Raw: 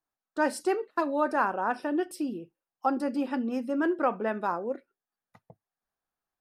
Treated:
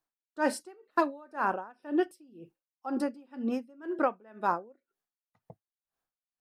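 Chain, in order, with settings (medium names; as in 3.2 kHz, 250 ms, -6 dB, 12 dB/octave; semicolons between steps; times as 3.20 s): logarithmic tremolo 2 Hz, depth 29 dB; trim +2.5 dB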